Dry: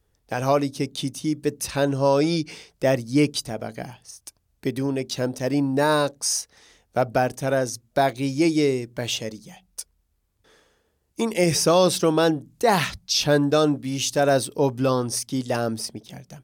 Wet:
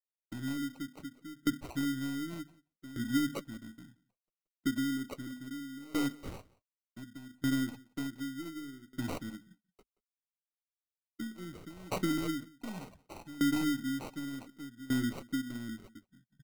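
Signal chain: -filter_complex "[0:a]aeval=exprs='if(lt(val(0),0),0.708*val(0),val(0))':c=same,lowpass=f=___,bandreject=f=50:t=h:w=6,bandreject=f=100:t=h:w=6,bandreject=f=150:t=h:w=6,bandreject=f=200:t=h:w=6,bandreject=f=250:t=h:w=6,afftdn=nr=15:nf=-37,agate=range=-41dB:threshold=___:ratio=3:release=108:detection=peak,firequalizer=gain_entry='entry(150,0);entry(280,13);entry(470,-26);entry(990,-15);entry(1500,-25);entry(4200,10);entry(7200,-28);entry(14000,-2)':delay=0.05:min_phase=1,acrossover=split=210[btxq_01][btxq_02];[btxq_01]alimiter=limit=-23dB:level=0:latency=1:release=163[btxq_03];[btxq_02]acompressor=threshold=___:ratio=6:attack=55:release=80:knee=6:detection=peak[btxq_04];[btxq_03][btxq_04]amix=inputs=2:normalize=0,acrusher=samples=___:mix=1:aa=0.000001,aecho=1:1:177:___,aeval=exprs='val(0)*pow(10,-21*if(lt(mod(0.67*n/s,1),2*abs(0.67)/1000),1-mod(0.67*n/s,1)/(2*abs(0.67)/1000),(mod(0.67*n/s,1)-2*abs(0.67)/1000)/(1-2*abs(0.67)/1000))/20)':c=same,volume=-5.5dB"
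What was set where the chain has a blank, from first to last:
9200, -45dB, -26dB, 26, 0.0891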